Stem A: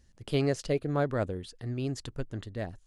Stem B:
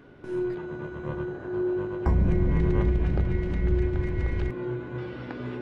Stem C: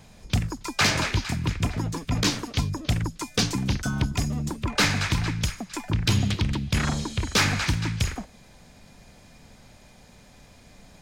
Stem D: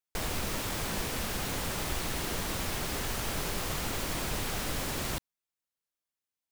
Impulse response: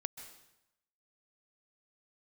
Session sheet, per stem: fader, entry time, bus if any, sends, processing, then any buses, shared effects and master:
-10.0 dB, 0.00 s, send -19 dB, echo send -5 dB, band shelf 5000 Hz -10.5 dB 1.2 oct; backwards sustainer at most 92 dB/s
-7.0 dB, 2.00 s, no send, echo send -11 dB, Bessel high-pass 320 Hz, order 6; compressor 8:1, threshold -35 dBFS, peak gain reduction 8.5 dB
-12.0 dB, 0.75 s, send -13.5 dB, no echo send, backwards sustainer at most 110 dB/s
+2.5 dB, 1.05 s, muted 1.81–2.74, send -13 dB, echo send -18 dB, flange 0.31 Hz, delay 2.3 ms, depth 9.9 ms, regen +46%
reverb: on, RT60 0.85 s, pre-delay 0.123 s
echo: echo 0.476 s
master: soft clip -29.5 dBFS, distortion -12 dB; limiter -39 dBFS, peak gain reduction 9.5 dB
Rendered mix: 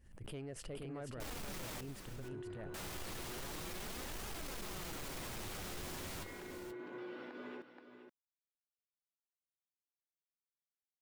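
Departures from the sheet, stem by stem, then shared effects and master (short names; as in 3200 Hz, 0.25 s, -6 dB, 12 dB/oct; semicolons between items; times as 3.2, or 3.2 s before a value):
stem A: send off; stem C: muted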